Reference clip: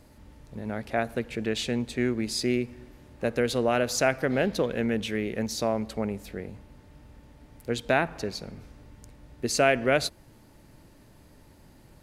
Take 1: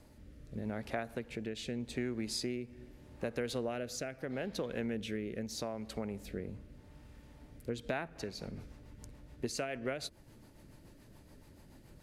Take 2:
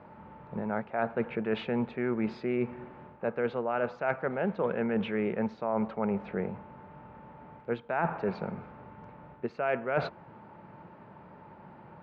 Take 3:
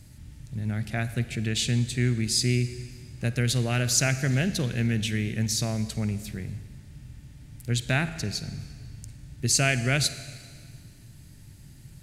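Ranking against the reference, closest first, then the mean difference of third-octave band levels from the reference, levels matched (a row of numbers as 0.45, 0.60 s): 1, 3, 2; 4.5, 6.5, 8.5 dB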